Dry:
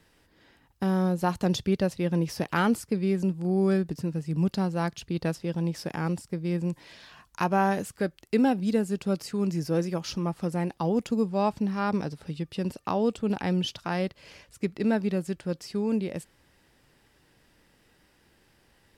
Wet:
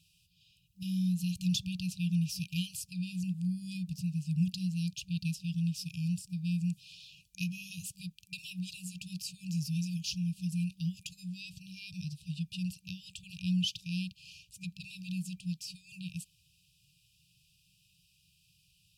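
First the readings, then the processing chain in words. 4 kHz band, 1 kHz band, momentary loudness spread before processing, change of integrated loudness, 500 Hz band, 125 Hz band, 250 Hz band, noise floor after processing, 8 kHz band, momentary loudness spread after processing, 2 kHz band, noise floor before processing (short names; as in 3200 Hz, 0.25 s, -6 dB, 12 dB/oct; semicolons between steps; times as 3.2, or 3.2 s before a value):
0.0 dB, under -40 dB, 7 LU, -8.0 dB, under -40 dB, -3.5 dB, -8.0 dB, -70 dBFS, 0.0 dB, 13 LU, -10.5 dB, -64 dBFS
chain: HPF 140 Hz 6 dB/oct; FFT band-reject 190–2400 Hz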